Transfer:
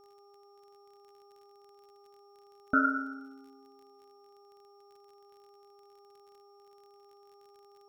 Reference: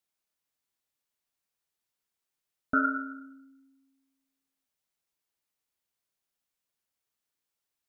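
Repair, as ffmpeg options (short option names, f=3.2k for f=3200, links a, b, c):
-af "adeclick=t=4,bandreject=f=403.9:t=h:w=4,bandreject=f=807.8:t=h:w=4,bandreject=f=1.2117k:t=h:w=4,bandreject=f=5.5k:w=30,agate=range=-21dB:threshold=-51dB"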